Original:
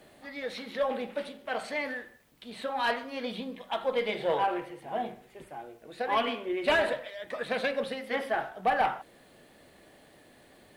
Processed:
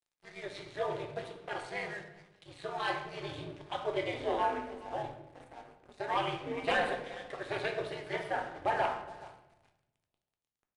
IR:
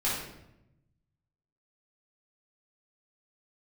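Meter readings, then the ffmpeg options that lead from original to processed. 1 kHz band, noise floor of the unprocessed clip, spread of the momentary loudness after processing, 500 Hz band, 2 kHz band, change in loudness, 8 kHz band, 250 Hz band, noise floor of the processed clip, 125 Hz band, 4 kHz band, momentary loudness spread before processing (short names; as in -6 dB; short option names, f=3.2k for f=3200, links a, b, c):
-4.0 dB, -58 dBFS, 20 LU, -5.0 dB, -4.5 dB, -4.5 dB, n/a, -6.0 dB, under -85 dBFS, +4.5 dB, -5.0 dB, 16 LU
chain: -filter_complex "[0:a]aeval=exprs='val(0)*sin(2*PI*100*n/s)':c=same,asplit=2[a][b];[b]adelay=419,lowpass=f=1.9k:p=1,volume=-15dB,asplit=2[c][d];[d]adelay=419,lowpass=f=1.9k:p=1,volume=0.28,asplit=2[e][f];[f]adelay=419,lowpass=f=1.9k:p=1,volume=0.28[g];[a][c][e][g]amix=inputs=4:normalize=0,aeval=exprs='sgn(val(0))*max(abs(val(0))-0.00335,0)':c=same,aresample=22050,aresample=44100,asplit=2[h][i];[1:a]atrim=start_sample=2205[j];[i][j]afir=irnorm=-1:irlink=0,volume=-11.5dB[k];[h][k]amix=inputs=2:normalize=0,volume=-4dB"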